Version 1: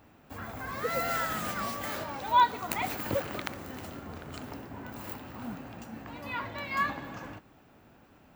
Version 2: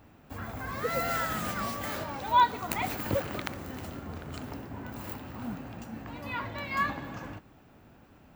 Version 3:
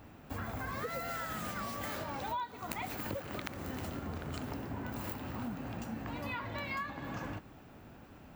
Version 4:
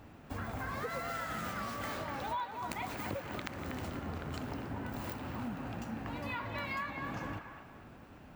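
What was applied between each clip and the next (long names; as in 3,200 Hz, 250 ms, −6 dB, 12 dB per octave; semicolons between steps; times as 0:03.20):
low-shelf EQ 190 Hz +5.5 dB
downward compressor 10 to 1, threshold −38 dBFS, peak gain reduction 20.5 dB; level +2.5 dB
running median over 3 samples; delay with a band-pass on its return 242 ms, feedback 35%, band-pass 1,400 Hz, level −5.5 dB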